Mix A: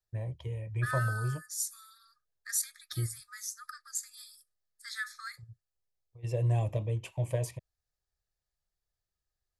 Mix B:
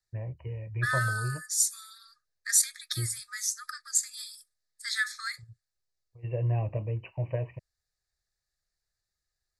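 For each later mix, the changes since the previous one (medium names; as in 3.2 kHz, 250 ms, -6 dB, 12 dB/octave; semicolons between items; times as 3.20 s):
first voice: add brick-wall FIR low-pass 3 kHz; second voice: add graphic EQ 2/4/8 kHz +8/+7/+9 dB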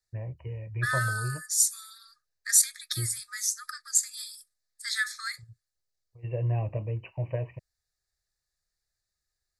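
master: add treble shelf 8 kHz +5 dB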